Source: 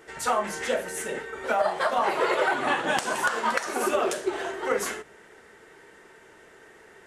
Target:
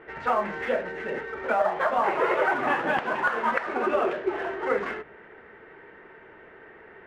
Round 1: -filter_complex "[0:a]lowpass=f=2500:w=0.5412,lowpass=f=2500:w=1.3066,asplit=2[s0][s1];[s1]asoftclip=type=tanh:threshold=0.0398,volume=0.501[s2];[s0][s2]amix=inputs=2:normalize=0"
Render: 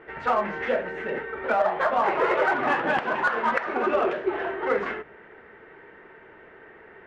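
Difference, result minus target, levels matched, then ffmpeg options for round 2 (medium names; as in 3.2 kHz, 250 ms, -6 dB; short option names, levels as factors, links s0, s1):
saturation: distortion -5 dB
-filter_complex "[0:a]lowpass=f=2500:w=0.5412,lowpass=f=2500:w=1.3066,asplit=2[s0][s1];[s1]asoftclip=type=tanh:threshold=0.01,volume=0.501[s2];[s0][s2]amix=inputs=2:normalize=0"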